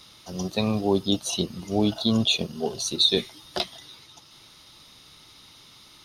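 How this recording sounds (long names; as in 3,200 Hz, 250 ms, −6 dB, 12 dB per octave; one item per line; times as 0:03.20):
background noise floor −52 dBFS
spectral slope −4.0 dB per octave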